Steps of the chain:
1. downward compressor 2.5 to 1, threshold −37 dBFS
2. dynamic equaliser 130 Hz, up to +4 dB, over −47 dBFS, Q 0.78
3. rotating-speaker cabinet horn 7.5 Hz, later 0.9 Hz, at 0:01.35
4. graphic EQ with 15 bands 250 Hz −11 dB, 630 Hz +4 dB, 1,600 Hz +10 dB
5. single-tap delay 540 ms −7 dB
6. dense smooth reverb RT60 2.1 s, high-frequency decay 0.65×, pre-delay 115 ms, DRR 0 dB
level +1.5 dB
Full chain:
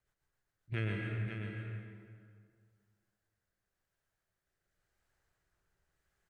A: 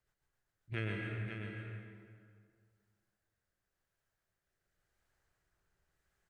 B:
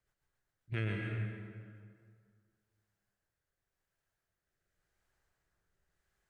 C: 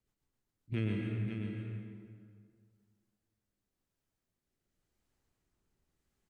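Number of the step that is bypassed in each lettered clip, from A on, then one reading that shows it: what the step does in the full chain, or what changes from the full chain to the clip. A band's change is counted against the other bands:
2, change in momentary loudness spread −2 LU
5, change in momentary loudness spread −2 LU
4, 250 Hz band +7.0 dB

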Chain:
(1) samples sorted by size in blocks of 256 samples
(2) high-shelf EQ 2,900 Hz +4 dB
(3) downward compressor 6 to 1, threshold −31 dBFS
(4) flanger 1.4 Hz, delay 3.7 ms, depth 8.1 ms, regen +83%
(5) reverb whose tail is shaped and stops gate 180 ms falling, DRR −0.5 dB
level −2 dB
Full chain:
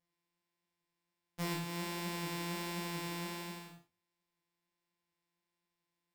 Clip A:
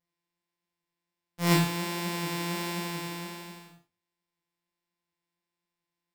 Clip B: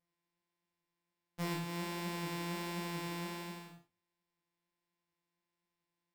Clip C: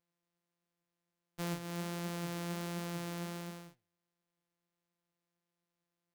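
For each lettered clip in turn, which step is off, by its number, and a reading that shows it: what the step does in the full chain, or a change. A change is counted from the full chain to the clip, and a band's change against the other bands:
3, change in momentary loudness spread +8 LU
2, change in crest factor −2.5 dB
5, 125 Hz band +4.0 dB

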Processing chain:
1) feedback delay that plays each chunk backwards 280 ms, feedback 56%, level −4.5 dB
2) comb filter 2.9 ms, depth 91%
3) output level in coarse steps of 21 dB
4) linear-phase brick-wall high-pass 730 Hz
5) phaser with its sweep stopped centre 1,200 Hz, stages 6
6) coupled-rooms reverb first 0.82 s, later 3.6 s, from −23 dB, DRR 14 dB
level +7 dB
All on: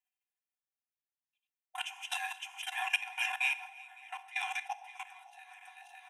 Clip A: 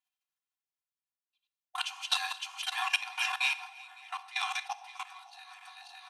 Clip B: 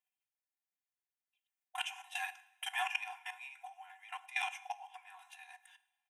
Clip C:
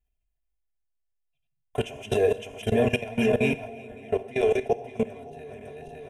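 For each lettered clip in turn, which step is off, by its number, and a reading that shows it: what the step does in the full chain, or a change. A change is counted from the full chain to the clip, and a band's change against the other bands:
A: 5, 4 kHz band +4.0 dB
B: 1, 1 kHz band +2.5 dB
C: 4, 1 kHz band +4.0 dB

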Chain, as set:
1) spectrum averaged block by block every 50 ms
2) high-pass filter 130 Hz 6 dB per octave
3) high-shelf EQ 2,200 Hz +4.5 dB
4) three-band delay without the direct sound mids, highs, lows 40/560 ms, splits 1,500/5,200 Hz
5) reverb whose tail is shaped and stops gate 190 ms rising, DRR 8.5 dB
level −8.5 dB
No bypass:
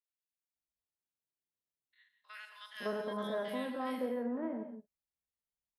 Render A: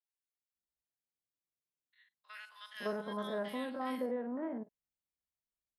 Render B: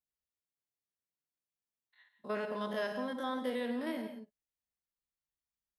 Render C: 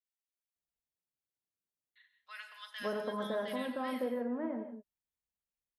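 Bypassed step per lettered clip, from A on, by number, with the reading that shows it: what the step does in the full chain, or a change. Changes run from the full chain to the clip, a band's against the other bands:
5, change in integrated loudness −1.0 LU
4, echo-to-direct ratio 1.5 dB to −8.5 dB
1, change in momentary loudness spread −1 LU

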